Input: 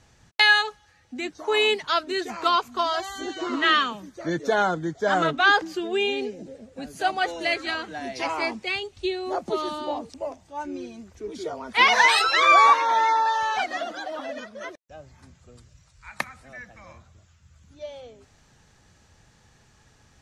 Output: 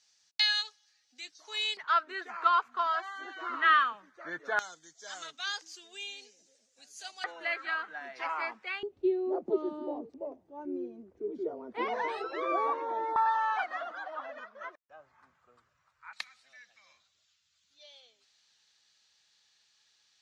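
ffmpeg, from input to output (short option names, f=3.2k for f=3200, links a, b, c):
-af "asetnsamples=n=441:p=0,asendcmd='1.77 bandpass f 1400;4.59 bandpass f 6200;7.24 bandpass f 1400;8.83 bandpass f 370;13.16 bandpass f 1200;16.13 bandpass f 4100',bandpass=f=5k:t=q:w=2.3:csg=0"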